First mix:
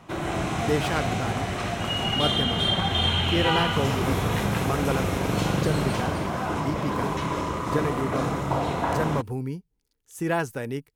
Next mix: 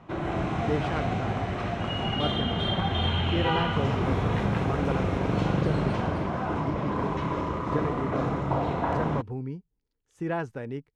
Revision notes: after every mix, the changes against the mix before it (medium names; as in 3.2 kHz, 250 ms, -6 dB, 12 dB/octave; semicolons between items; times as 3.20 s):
speech -3.0 dB; master: add tape spacing loss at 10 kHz 23 dB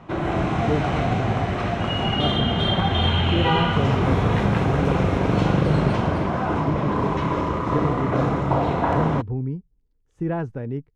speech: add tilt EQ -3 dB/octave; background +6.0 dB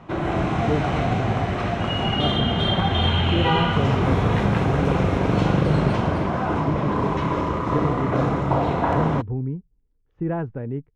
speech: add Gaussian low-pass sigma 2.6 samples